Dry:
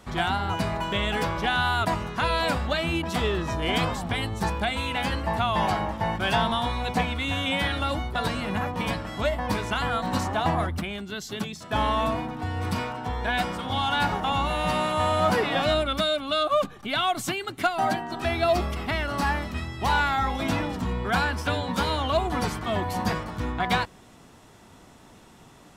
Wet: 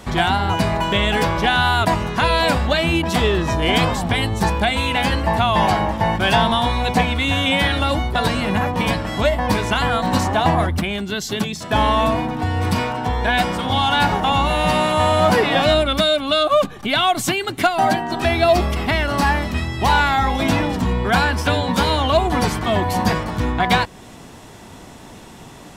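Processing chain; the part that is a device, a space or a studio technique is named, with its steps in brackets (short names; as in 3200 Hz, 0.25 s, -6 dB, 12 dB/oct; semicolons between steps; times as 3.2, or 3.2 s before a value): bell 1300 Hz -4.5 dB 0.27 oct; parallel compression (in parallel at -2 dB: compressor, threshold -34 dBFS, peak gain reduction 15 dB); on the sum: gain +6.5 dB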